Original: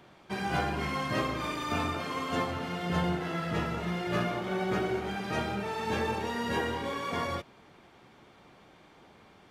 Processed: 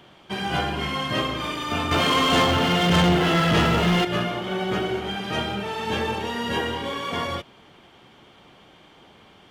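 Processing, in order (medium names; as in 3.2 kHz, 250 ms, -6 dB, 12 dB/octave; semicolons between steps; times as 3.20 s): peaking EQ 3.1 kHz +10.5 dB 0.26 oct; 1.91–4.05 s: waveshaping leveller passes 3; trim +4.5 dB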